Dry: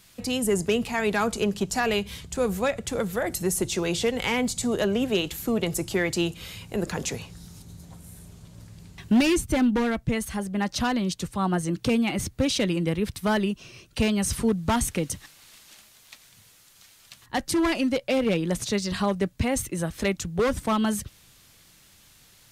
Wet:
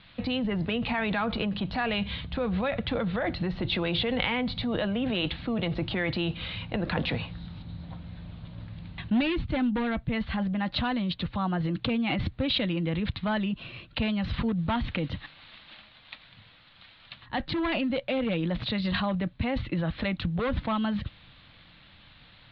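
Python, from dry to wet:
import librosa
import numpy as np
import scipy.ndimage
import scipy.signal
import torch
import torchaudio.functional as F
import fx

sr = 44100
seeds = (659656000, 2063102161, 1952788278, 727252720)

p1 = scipy.signal.sosfilt(scipy.signal.butter(12, 4100.0, 'lowpass', fs=sr, output='sos'), x)
p2 = fx.peak_eq(p1, sr, hz=400.0, db=-14.5, octaves=0.22)
p3 = fx.over_compress(p2, sr, threshold_db=-31.0, ratio=-0.5)
p4 = p2 + (p3 * librosa.db_to_amplitude(1.0))
y = p4 * librosa.db_to_amplitude(-5.0)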